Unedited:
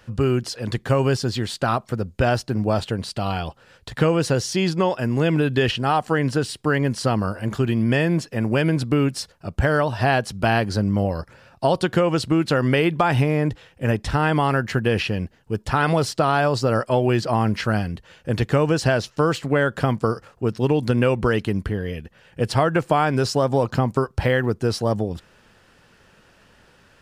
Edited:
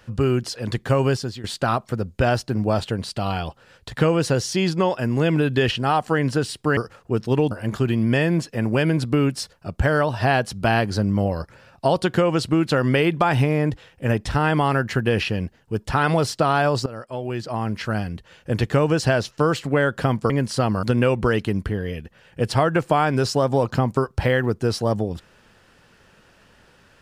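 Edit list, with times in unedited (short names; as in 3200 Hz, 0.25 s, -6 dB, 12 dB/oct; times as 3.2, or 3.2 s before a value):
1.09–1.44 fade out, to -15.5 dB
6.77–7.3 swap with 20.09–20.83
16.65–18.29 fade in linear, from -17 dB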